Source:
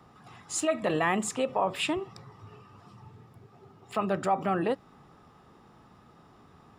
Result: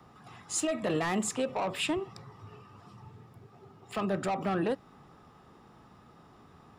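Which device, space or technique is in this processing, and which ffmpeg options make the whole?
one-band saturation: -filter_complex "[0:a]acrossover=split=370|3800[link_01][link_02][link_03];[link_02]asoftclip=type=tanh:threshold=-28.5dB[link_04];[link_01][link_04][link_03]amix=inputs=3:normalize=0"

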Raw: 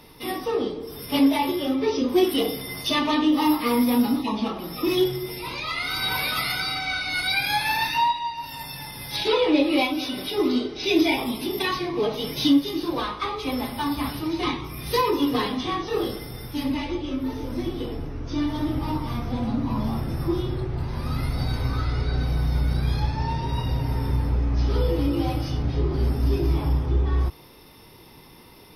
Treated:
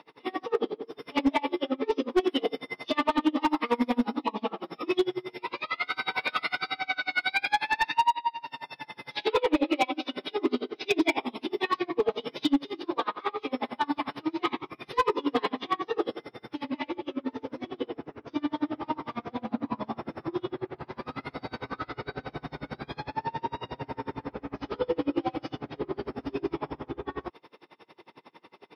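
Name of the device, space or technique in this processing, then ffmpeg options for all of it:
helicopter radio: -af "highpass=330,lowpass=2700,aeval=exprs='val(0)*pow(10,-31*(0.5-0.5*cos(2*PI*11*n/s))/20)':channel_layout=same,asoftclip=type=hard:threshold=-21.5dB,volume=5dB"

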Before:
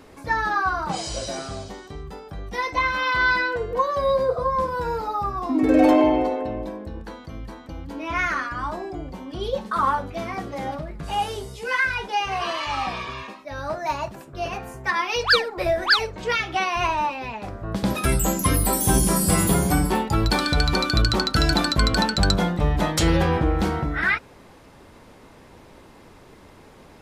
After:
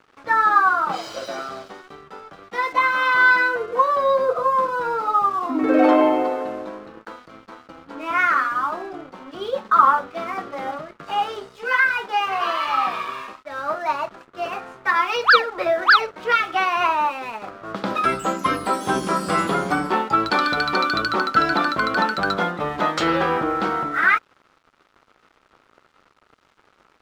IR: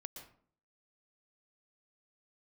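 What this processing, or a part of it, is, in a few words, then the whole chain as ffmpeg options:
pocket radio on a weak battery: -filter_complex "[0:a]asettb=1/sr,asplit=3[link_01][link_02][link_03];[link_01]atrim=end=21.114[link_04];[link_02]atrim=start=21.11:end=22.31,asetpts=PTS-STARTPTS,afade=type=in:duration=0.004:curve=qsin,afade=type=out:start_time=1.196:duration=0.004:curve=qsin,acrossover=split=2900[link_05][link_06];[link_06]acompressor=threshold=-28dB:ratio=4:attack=1:release=60[link_07];[link_05][link_07]amix=inputs=2:normalize=0[link_08];[link_03]atrim=start=22.306[link_09];[link_04][link_08]acrossfade=duration=0.004:curve1=hsin:curve2=qsin[link_10];[link_10][link_09]acrossfade=duration=0.004:curve1=qsin:curve2=hsin,highpass=290,lowpass=3800,aeval=exprs='sgn(val(0))*max(abs(val(0))-0.00422,0)':channel_layout=same,equalizer=frequency=1300:width_type=o:width=0.37:gain=10.5,volume=2dB"

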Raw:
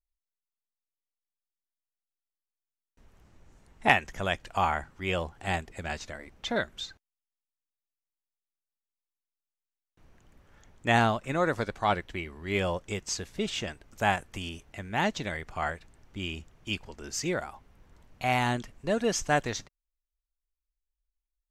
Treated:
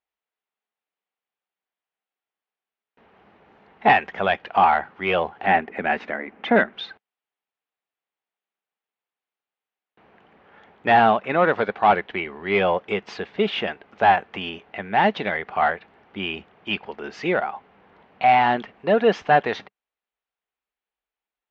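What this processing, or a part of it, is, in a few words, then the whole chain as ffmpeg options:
overdrive pedal into a guitar cabinet: -filter_complex "[0:a]asplit=2[link_01][link_02];[link_02]highpass=frequency=720:poles=1,volume=20dB,asoftclip=type=tanh:threshold=-5dB[link_03];[link_01][link_03]amix=inputs=2:normalize=0,lowpass=frequency=3100:poles=1,volume=-6dB,highpass=87,equalizer=frequency=120:width_type=q:width=4:gain=-4,equalizer=frequency=200:width_type=q:width=4:gain=7,equalizer=frequency=430:width_type=q:width=4:gain=6,equalizer=frequency=770:width_type=q:width=4:gain=6,lowpass=frequency=3400:width=0.5412,lowpass=frequency=3400:width=1.3066,asettb=1/sr,asplit=3[link_04][link_05][link_06];[link_04]atrim=end=5.464[link_07];[link_05]atrim=start=5.46:end=6.73,asetpts=PTS-STARTPTS,afade=type=in:duration=0.004:curve=qsin,afade=type=out:start_time=1.266:duration=0.004:curve=qsin,equalizer=frequency=125:width_type=o:width=1:gain=-6,equalizer=frequency=250:width_type=o:width=1:gain=10,equalizer=frequency=2000:width_type=o:width=1:gain=5,equalizer=frequency=4000:width_type=o:width=1:gain=-8[link_08];[link_06]atrim=start=6.726[link_09];[link_07][link_08]acrossfade=duration=0.004:curve1=hsin:curve2=qsin[link_10];[link_10][link_09]acrossfade=duration=0.004:curve1=qsin:curve2=hsin,volume=-2dB"

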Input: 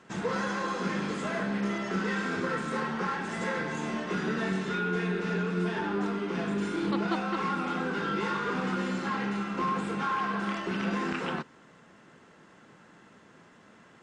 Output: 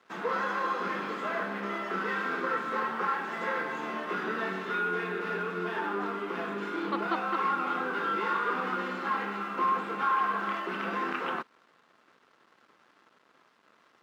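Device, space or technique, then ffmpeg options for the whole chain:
pocket radio on a weak battery: -af "highpass=320,lowpass=3500,aeval=exprs='sgn(val(0))*max(abs(val(0))-0.00119,0)':channel_layout=same,highpass=130,equalizer=frequency=1200:width_type=o:width=0.52:gain=6"

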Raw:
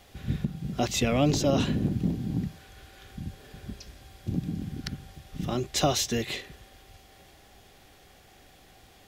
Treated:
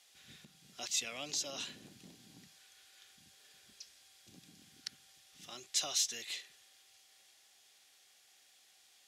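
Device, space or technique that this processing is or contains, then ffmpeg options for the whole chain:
piezo pickup straight into a mixer: -af "lowpass=8200,aderivative"

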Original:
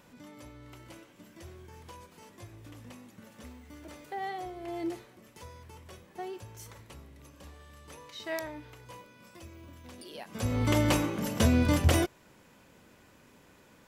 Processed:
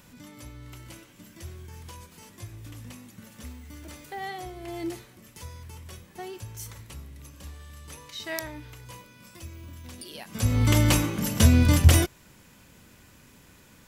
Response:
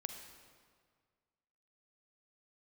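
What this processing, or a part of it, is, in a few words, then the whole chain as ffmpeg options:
smiley-face EQ: -af "lowshelf=frequency=160:gain=6,equalizer=frequency=550:width_type=o:width=2.2:gain=-6,highshelf=frequency=5500:gain=6.5,volume=4.5dB"

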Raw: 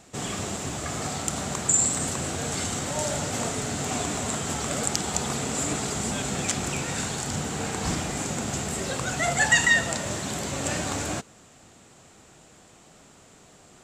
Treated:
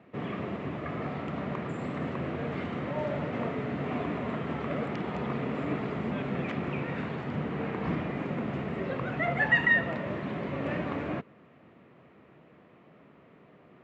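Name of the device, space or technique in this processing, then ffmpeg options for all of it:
bass cabinet: -af "highpass=frequency=87:width=0.5412,highpass=frequency=87:width=1.3066,equalizer=frequency=100:width_type=q:width=4:gain=-9,equalizer=frequency=800:width_type=q:width=4:gain=-8,equalizer=frequency=1500:width_type=q:width=4:gain=-7,lowpass=frequency=2200:width=0.5412,lowpass=frequency=2200:width=1.3066"

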